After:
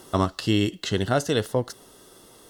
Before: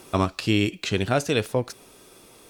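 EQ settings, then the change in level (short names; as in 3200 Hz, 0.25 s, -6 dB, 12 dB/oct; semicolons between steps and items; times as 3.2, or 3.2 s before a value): Butterworth band-stop 2400 Hz, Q 4.5; 0.0 dB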